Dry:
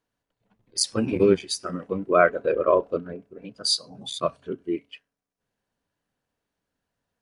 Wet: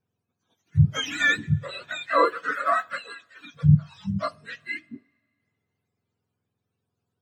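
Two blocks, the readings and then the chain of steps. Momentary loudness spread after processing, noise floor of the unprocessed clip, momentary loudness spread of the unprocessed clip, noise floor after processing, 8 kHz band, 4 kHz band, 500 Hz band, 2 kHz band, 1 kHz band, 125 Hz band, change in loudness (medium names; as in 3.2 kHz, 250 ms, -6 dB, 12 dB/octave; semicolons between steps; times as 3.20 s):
15 LU, -85 dBFS, 14 LU, -82 dBFS, under -10 dB, -5.0 dB, -9.0 dB, +6.5 dB, +2.0 dB, +14.5 dB, 0.0 dB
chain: spectrum inverted on a logarithmic axis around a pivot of 840 Hz; two-slope reverb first 0.32 s, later 2.1 s, from -18 dB, DRR 19.5 dB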